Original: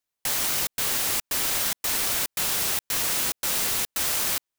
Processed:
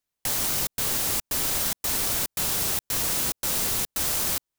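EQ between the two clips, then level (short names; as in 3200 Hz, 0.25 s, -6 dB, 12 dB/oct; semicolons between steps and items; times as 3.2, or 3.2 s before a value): dynamic EQ 2200 Hz, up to -4 dB, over -43 dBFS, Q 0.76; low shelf 230 Hz +7 dB; 0.0 dB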